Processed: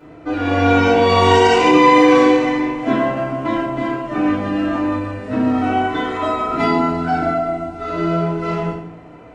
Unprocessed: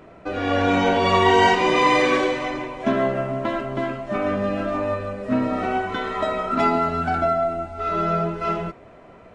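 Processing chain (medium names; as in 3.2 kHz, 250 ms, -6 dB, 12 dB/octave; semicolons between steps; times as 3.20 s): 1.18–1.67 s: treble shelf 6.2 kHz +8.5 dB; FDN reverb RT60 0.67 s, low-frequency decay 1.45×, high-frequency decay 0.85×, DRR -9.5 dB; loudness maximiser -5 dB; trim -1 dB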